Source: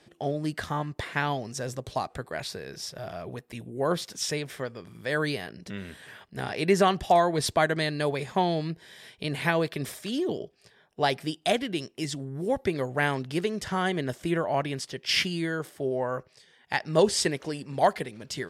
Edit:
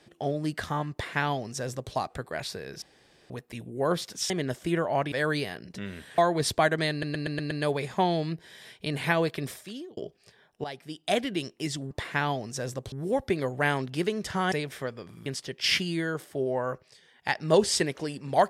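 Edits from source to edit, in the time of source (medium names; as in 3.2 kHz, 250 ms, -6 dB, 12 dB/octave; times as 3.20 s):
0.92–1.93 s: copy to 12.29 s
2.82–3.30 s: room tone
4.30–5.04 s: swap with 13.89–14.71 s
6.10–7.16 s: delete
7.89 s: stutter 0.12 s, 6 plays
9.75–10.35 s: fade out
11.02–11.56 s: fade in quadratic, from -14 dB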